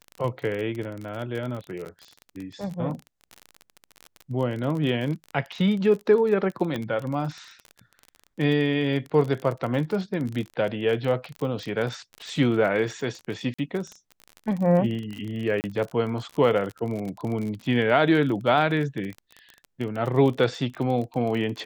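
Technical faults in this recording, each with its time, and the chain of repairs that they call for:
crackle 32/s -30 dBFS
1.85–1.86 gap 9.8 ms
6.76 pop -17 dBFS
13.54–13.59 gap 45 ms
15.61–15.64 gap 29 ms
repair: de-click; interpolate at 1.85, 9.8 ms; interpolate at 13.54, 45 ms; interpolate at 15.61, 29 ms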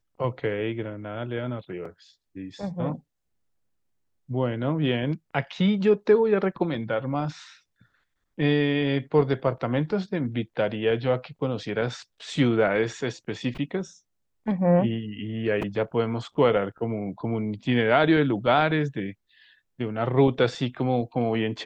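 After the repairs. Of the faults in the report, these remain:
none

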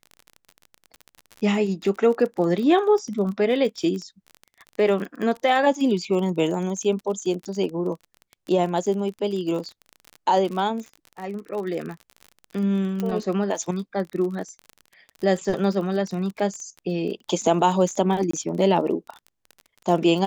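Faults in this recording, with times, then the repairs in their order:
crackle 32/s -30 dBFS
13 pop -15 dBFS
18.31–18.33 gap 24 ms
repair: de-click; interpolate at 18.31, 24 ms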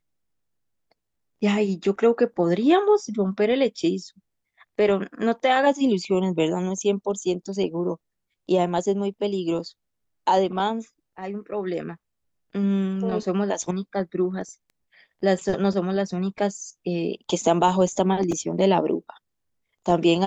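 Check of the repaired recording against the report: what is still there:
none

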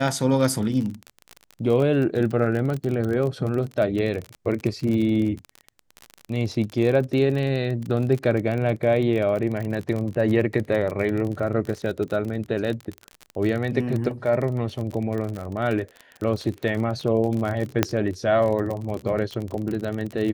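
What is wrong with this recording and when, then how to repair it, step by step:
crackle 35/s -27 dBFS
17.83 pop -3 dBFS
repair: de-click

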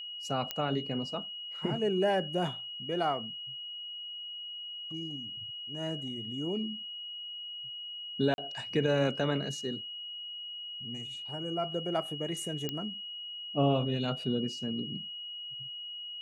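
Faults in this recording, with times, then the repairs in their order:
tone 2900 Hz -39 dBFS
0.51 pop -16 dBFS
8.34–8.38 gap 41 ms
12.69 pop -18 dBFS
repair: de-click; notch 2900 Hz, Q 30; interpolate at 8.34, 41 ms

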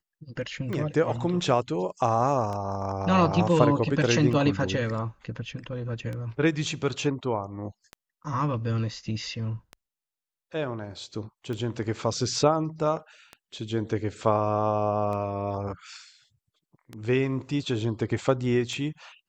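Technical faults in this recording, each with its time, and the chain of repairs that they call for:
tick 33 1/3 rpm -23 dBFS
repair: de-click

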